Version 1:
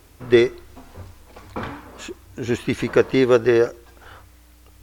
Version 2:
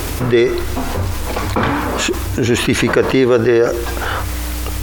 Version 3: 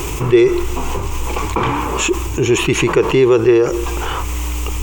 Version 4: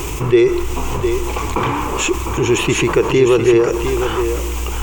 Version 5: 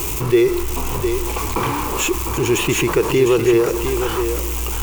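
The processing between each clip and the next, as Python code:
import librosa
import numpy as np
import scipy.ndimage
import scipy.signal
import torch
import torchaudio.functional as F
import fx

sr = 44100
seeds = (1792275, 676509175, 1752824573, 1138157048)

y1 = fx.env_flatten(x, sr, amount_pct=70)
y2 = fx.ripple_eq(y1, sr, per_octave=0.71, db=11)
y2 = F.gain(torch.from_numpy(y2), -2.5).numpy()
y3 = y2 + 10.0 ** (-7.5 / 20.0) * np.pad(y2, (int(705 * sr / 1000.0), 0))[:len(y2)]
y3 = F.gain(torch.from_numpy(y3), -1.0).numpy()
y4 = y3 + 0.5 * 10.0 ** (-17.5 / 20.0) * np.diff(np.sign(y3), prepend=np.sign(y3[:1]))
y4 = F.gain(torch.from_numpy(y4), -2.5).numpy()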